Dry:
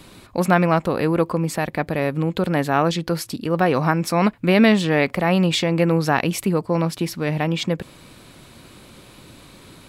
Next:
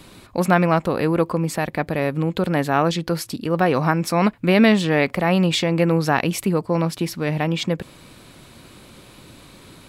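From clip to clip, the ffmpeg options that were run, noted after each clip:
ffmpeg -i in.wav -af anull out.wav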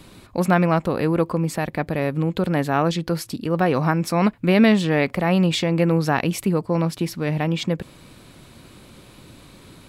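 ffmpeg -i in.wav -af "lowshelf=frequency=330:gain=3.5,volume=-2.5dB" out.wav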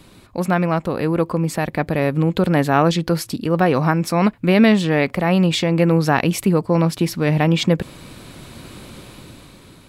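ffmpeg -i in.wav -af "dynaudnorm=framelen=200:gausssize=11:maxgain=15.5dB,volume=-1dB" out.wav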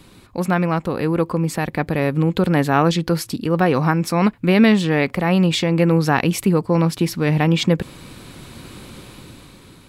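ffmpeg -i in.wav -af "equalizer=frequency=630:width_type=o:width=0.23:gain=-5.5" out.wav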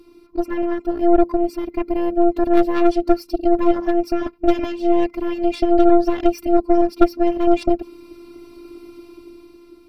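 ffmpeg -i in.wav -af "superequalizer=6b=3.98:11b=0.282:13b=0.447:15b=0.282:16b=0.398,afftfilt=real='hypot(re,im)*cos(PI*b)':imag='0':win_size=512:overlap=0.75,aeval=exprs='0.891*(cos(1*acos(clip(val(0)/0.891,-1,1)))-cos(1*PI/2))+0.316*(cos(4*acos(clip(val(0)/0.891,-1,1)))-cos(4*PI/2))':channel_layout=same,volume=-3.5dB" out.wav

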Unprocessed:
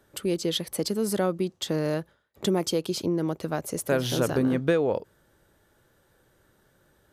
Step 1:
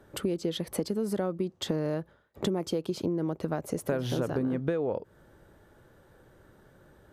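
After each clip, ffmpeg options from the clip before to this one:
ffmpeg -i in.wav -af "highshelf=frequency=2200:gain=-11.5,acompressor=threshold=-35dB:ratio=5,volume=7.5dB" out.wav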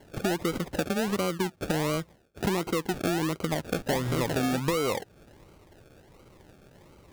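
ffmpeg -i in.wav -filter_complex "[0:a]asplit=2[link_01][link_02];[link_02]volume=31.5dB,asoftclip=hard,volume=-31.5dB,volume=-6dB[link_03];[link_01][link_03]amix=inputs=2:normalize=0,acrusher=samples=35:mix=1:aa=0.000001:lfo=1:lforange=21:lforate=1.4" out.wav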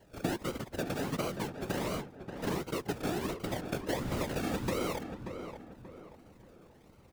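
ffmpeg -i in.wav -filter_complex "[0:a]acrusher=bits=2:mode=log:mix=0:aa=0.000001,afftfilt=real='hypot(re,im)*cos(2*PI*random(0))':imag='hypot(re,im)*sin(2*PI*random(1))':win_size=512:overlap=0.75,asplit=2[link_01][link_02];[link_02]adelay=583,lowpass=frequency=1900:poles=1,volume=-8dB,asplit=2[link_03][link_04];[link_04]adelay=583,lowpass=frequency=1900:poles=1,volume=0.4,asplit=2[link_05][link_06];[link_06]adelay=583,lowpass=frequency=1900:poles=1,volume=0.4,asplit=2[link_07][link_08];[link_08]adelay=583,lowpass=frequency=1900:poles=1,volume=0.4,asplit=2[link_09][link_10];[link_10]adelay=583,lowpass=frequency=1900:poles=1,volume=0.4[link_11];[link_01][link_03][link_05][link_07][link_09][link_11]amix=inputs=6:normalize=0,volume=-1.5dB" out.wav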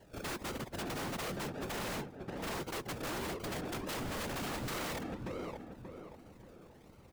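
ffmpeg -i in.wav -af "aeval=exprs='0.0188*(abs(mod(val(0)/0.0188+3,4)-2)-1)':channel_layout=same,volume=1dB" out.wav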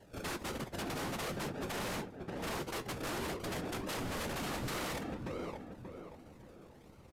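ffmpeg -i in.wav -af "flanger=delay=9.8:depth=5.9:regen=-60:speed=0.52:shape=triangular,aresample=32000,aresample=44100,volume=4.5dB" out.wav

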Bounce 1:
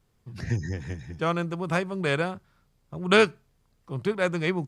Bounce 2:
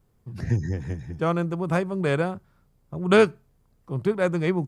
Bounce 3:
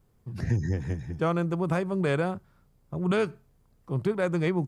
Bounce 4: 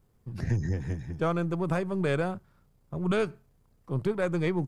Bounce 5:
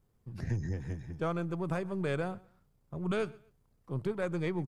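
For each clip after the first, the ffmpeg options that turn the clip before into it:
ffmpeg -i in.wav -af "equalizer=frequency=3700:width=0.39:gain=-9,volume=4dB" out.wav
ffmpeg -i in.wav -af "alimiter=limit=-16dB:level=0:latency=1:release=95" out.wav
ffmpeg -i in.wav -af "aeval=exprs='if(lt(val(0),0),0.708*val(0),val(0))':channel_layout=same" out.wav
ffmpeg -i in.wav -af "aecho=1:1:126|252:0.0708|0.0184,volume=-5.5dB" out.wav

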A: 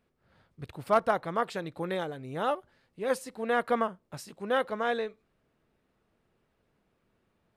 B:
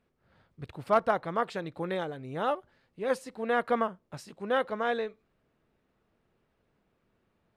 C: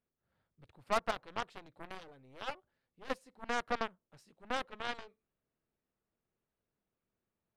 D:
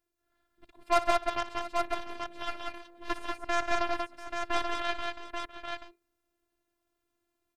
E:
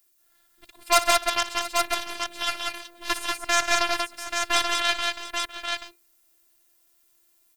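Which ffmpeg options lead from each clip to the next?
ffmpeg -i in.wav -af "highshelf=frequency=8300:gain=-10.5" out.wav
ffmpeg -i in.wav -af "aeval=exprs='0.211*(cos(1*acos(clip(val(0)/0.211,-1,1)))-cos(1*PI/2))+0.0211*(cos(3*acos(clip(val(0)/0.211,-1,1)))-cos(3*PI/2))+0.0335*(cos(4*acos(clip(val(0)/0.211,-1,1)))-cos(4*PI/2))+0.0075*(cos(5*acos(clip(val(0)/0.211,-1,1)))-cos(5*PI/2))+0.0376*(cos(7*acos(clip(val(0)/0.211,-1,1)))-cos(7*PI/2))':channel_layout=same,volume=-7.5dB" out.wav
ffmpeg -i in.wav -af "aecho=1:1:59|134|187|690|834:0.178|0.119|0.668|0.15|0.531,afftfilt=real='hypot(re,im)*cos(PI*b)':imag='0':win_size=512:overlap=0.75,volume=9dB" out.wav
ffmpeg -i in.wav -filter_complex "[0:a]crystalizer=i=10:c=0,asplit=2[link_01][link_02];[link_02]volume=11dB,asoftclip=hard,volume=-11dB,volume=-9dB[link_03];[link_01][link_03]amix=inputs=2:normalize=0,volume=-2.5dB" out.wav

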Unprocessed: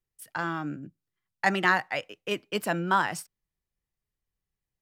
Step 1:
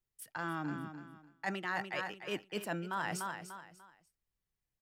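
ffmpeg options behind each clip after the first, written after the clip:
ffmpeg -i in.wav -af "aecho=1:1:295|590|885:0.251|0.0728|0.0211,areverse,acompressor=threshold=-31dB:ratio=5,areverse,volume=-3dB" out.wav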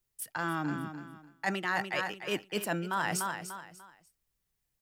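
ffmpeg -i in.wav -af "highshelf=frequency=5900:gain=6,volume=5dB" out.wav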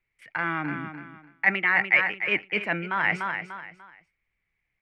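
ffmpeg -i in.wav -af "lowpass=frequency=2200:width_type=q:width=11,volume=1.5dB" out.wav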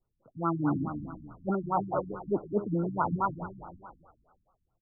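ffmpeg -i in.wav -filter_complex "[0:a]asplit=7[link_01][link_02][link_03][link_04][link_05][link_06][link_07];[link_02]adelay=159,afreqshift=-42,volume=-15dB[link_08];[link_03]adelay=318,afreqshift=-84,volume=-19.9dB[link_09];[link_04]adelay=477,afreqshift=-126,volume=-24.8dB[link_10];[link_05]adelay=636,afreqshift=-168,volume=-29.6dB[link_11];[link_06]adelay=795,afreqshift=-210,volume=-34.5dB[link_12];[link_07]adelay=954,afreqshift=-252,volume=-39.4dB[link_13];[link_01][link_08][link_09][link_10][link_11][link_12][link_13]amix=inputs=7:normalize=0,afftfilt=real='re*lt(b*sr/1024,280*pow(1500/280,0.5+0.5*sin(2*PI*4.7*pts/sr)))':imag='im*lt(b*sr/1024,280*pow(1500/280,0.5+0.5*sin(2*PI*4.7*pts/sr)))':win_size=1024:overlap=0.75,volume=4.5dB" out.wav

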